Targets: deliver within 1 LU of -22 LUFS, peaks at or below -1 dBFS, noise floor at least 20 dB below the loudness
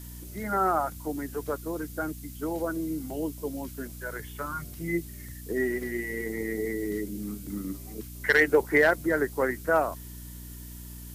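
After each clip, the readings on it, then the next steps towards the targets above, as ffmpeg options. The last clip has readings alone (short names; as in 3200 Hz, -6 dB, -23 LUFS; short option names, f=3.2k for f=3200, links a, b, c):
hum 60 Hz; harmonics up to 300 Hz; hum level -40 dBFS; noise floor -42 dBFS; noise floor target -49 dBFS; loudness -29.0 LUFS; peak -11.5 dBFS; loudness target -22.0 LUFS
-> -af "bandreject=f=60:t=h:w=4,bandreject=f=120:t=h:w=4,bandreject=f=180:t=h:w=4,bandreject=f=240:t=h:w=4,bandreject=f=300:t=h:w=4"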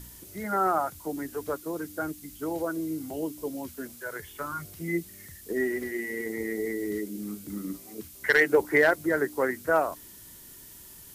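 hum none; noise floor -48 dBFS; noise floor target -49 dBFS
-> -af "afftdn=nr=6:nf=-48"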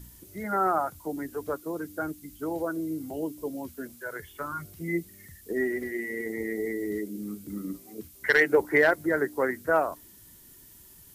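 noise floor -53 dBFS; loudness -29.0 LUFS; peak -11.5 dBFS; loudness target -22.0 LUFS
-> -af "volume=7dB"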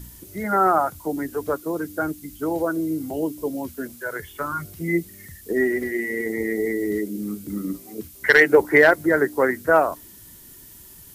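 loudness -22.0 LUFS; peak -4.5 dBFS; noise floor -46 dBFS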